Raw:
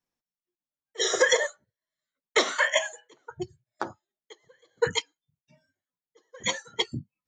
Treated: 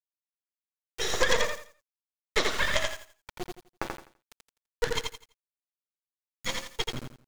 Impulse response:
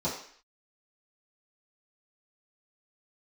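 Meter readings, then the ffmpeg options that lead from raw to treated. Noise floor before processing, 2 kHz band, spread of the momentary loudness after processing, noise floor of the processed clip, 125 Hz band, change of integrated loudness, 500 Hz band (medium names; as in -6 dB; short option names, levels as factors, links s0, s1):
under -85 dBFS, -3.5 dB, 17 LU, under -85 dBFS, 0.0 dB, -3.5 dB, -4.5 dB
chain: -filter_complex "[0:a]acrusher=bits=3:dc=4:mix=0:aa=0.000001,aecho=1:1:84|168|252|336:0.631|0.17|0.046|0.0124,acrossover=split=7000[s0][s1];[s1]acompressor=threshold=0.00501:ratio=4:attack=1:release=60[s2];[s0][s2]amix=inputs=2:normalize=0"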